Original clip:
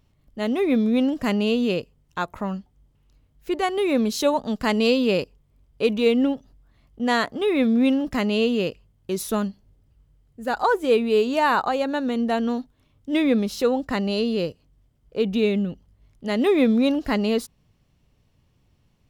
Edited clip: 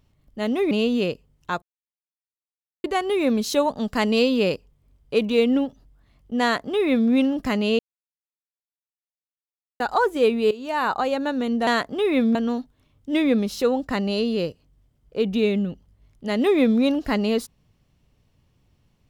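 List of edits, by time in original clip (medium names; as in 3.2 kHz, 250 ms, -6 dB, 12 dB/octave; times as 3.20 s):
0.71–1.39 s: delete
2.30–3.52 s: mute
7.10–7.78 s: copy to 12.35 s
8.47–10.48 s: mute
11.19–11.70 s: fade in, from -16.5 dB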